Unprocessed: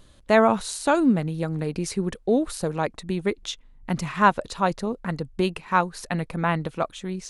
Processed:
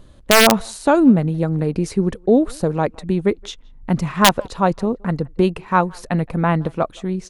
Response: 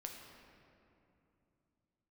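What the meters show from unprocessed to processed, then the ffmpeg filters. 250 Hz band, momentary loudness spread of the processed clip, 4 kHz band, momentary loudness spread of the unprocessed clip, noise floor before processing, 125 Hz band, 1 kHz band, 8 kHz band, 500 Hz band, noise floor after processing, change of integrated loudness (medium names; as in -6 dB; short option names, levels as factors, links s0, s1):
+7.0 dB, 10 LU, +12.0 dB, 10 LU, -53 dBFS, +8.0 dB, +4.0 dB, +9.5 dB, +5.5 dB, -45 dBFS, +6.5 dB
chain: -filter_complex "[0:a]tiltshelf=f=1300:g=5,asplit=2[s0][s1];[s1]adelay=170,highpass=300,lowpass=3400,asoftclip=type=hard:threshold=0.282,volume=0.0501[s2];[s0][s2]amix=inputs=2:normalize=0,aeval=exprs='(mod(1.78*val(0)+1,2)-1)/1.78':c=same,volume=1.41"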